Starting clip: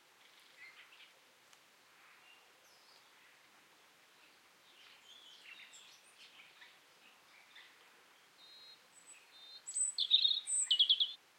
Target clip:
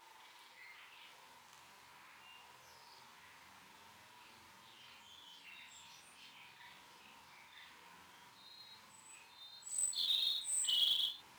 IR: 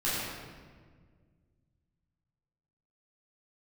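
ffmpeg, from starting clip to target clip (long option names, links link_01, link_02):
-filter_complex "[0:a]afftfilt=real='re':imag='-im':win_size=4096:overlap=0.75,equalizer=frequency=940:width_type=o:width=0.29:gain=12,bandreject=frequency=50:width_type=h:width=6,bandreject=frequency=100:width_type=h:width=6,bandreject=frequency=150:width_type=h:width=6,bandreject=frequency=200:width_type=h:width=6,bandreject=frequency=250:width_type=h:width=6,bandreject=frequency=300:width_type=h:width=6,bandreject=frequency=350:width_type=h:width=6,bandreject=frequency=400:width_type=h:width=6,acrossover=split=840|2400[link_01][link_02][link_03];[link_03]alimiter=level_in=6.5dB:limit=-24dB:level=0:latency=1:release=140,volume=-6.5dB[link_04];[link_01][link_02][link_04]amix=inputs=3:normalize=0,asubboost=boost=4.5:cutoff=210,areverse,acompressor=mode=upward:threshold=-56dB:ratio=2.5,areverse,flanger=delay=8.9:depth=5.8:regen=-20:speed=0.22:shape=sinusoidal,acontrast=57,acrusher=bits=4:mode=log:mix=0:aa=0.000001"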